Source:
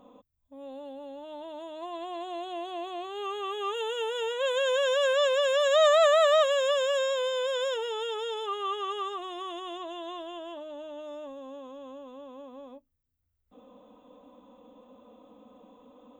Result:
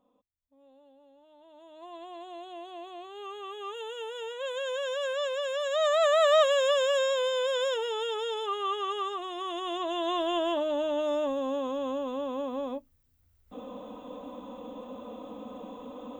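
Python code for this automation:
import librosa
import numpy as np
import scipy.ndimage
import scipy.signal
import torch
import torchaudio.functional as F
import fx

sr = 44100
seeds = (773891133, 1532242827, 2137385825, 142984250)

y = fx.gain(x, sr, db=fx.line((1.35, -16.5), (1.91, -6.5), (5.73, -6.5), (6.39, 1.0), (9.33, 1.0), (10.37, 12.0)))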